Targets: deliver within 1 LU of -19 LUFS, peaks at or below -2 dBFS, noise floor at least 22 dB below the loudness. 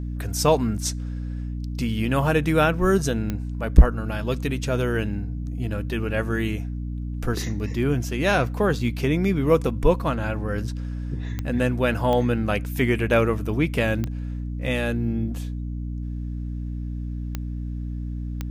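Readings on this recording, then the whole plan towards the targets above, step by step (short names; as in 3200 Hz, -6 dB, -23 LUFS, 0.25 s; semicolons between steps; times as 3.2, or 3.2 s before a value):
clicks 6; hum 60 Hz; harmonics up to 300 Hz; hum level -27 dBFS; loudness -24.5 LUFS; peak -2.5 dBFS; loudness target -19.0 LUFS
-> de-click; de-hum 60 Hz, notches 5; gain +5.5 dB; limiter -2 dBFS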